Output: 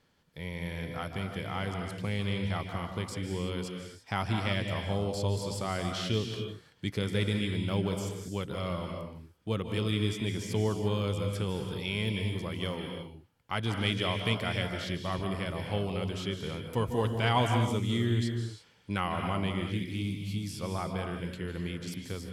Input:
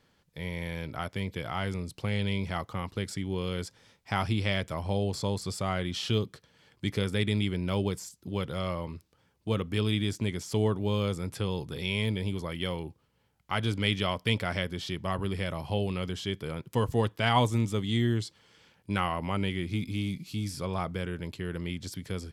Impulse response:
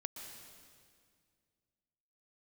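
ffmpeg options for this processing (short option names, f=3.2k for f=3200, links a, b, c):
-filter_complex "[1:a]atrim=start_sample=2205,afade=t=out:st=0.33:d=0.01,atrim=end_sample=14994,asetrate=34839,aresample=44100[a];[0:a][a]afir=irnorm=-1:irlink=0"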